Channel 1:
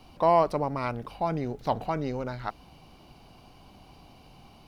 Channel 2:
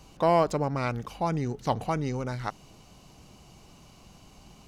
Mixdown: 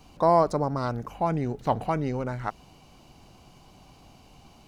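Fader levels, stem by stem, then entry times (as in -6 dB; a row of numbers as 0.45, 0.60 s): -2.0, -5.0 dB; 0.00, 0.00 s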